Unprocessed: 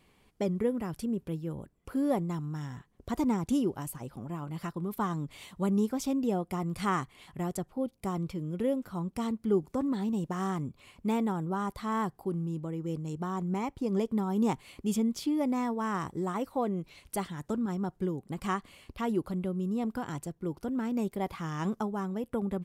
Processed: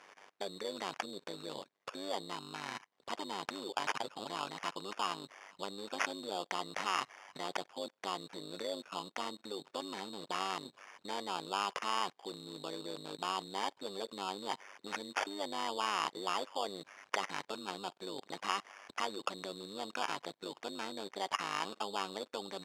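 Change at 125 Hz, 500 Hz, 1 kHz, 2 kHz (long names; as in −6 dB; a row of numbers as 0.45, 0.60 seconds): −22.0, −8.0, −1.0, +3.0 decibels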